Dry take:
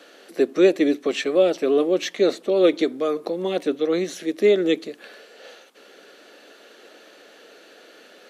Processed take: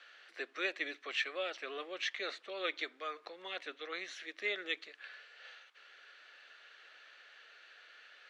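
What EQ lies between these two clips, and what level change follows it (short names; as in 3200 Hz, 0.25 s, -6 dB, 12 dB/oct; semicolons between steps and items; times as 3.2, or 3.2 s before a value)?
ladder band-pass 2100 Hz, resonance 25%; tilt -3 dB/oct; high shelf 2300 Hz +11.5 dB; +3.0 dB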